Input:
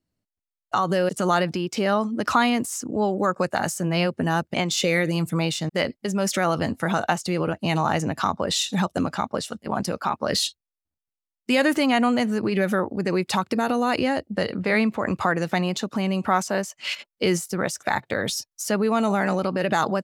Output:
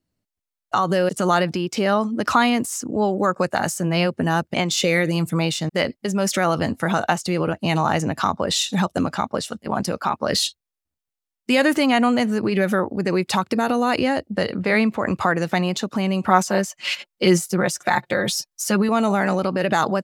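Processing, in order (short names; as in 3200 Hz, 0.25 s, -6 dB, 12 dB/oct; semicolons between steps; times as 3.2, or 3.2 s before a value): 16.28–18.89 comb 5.6 ms, depth 64%; gain +2.5 dB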